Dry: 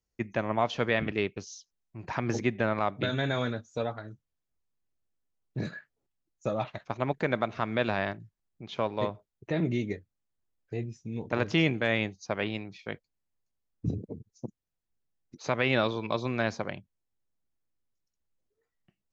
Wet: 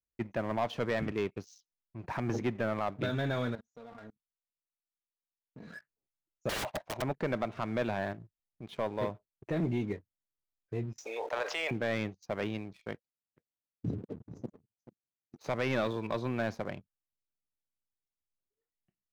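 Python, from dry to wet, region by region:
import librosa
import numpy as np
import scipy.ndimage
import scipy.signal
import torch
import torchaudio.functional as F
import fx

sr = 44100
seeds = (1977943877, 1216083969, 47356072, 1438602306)

y = fx.chain(x, sr, fx.comb(ms=4.3, depth=0.68),
    fx.level_steps(step_db=23), at=(3.55, 5.74))
y = fx.chain(y, sr, fx.band_shelf(hz=740.0, db=12.0, octaves=1.1),
    fx.overflow_wrap(gain_db=25.0), at=(6.49, 7.02))
y = fx.chain(y, sr, fx.steep_highpass(hz=530.0, slope=36),
    fx.env_flatten(amount_pct=70), at=(10.98, 11.71))
y = fx.chain(y, sr, fx.notch_comb(f0_hz=1100.0),
    fx.echo_single(ms=434, db=-14.0), at=(12.93, 15.38))
y = fx.high_shelf(y, sr, hz=2700.0, db=-9.0)
y = fx.leveller(y, sr, passes=2)
y = y * librosa.db_to_amplitude(-8.5)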